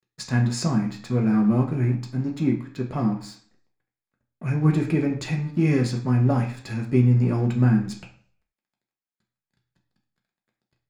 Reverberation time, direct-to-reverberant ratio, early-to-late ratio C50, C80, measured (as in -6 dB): 0.50 s, 0.0 dB, 9.5 dB, 13.0 dB